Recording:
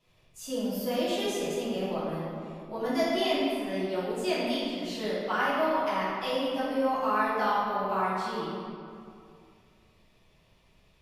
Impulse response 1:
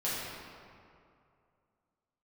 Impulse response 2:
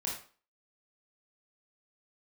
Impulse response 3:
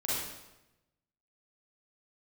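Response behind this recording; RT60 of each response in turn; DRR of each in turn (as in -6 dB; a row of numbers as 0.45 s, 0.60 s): 1; 2.5 s, 0.40 s, 0.95 s; -10.0 dB, -3.5 dB, -8.5 dB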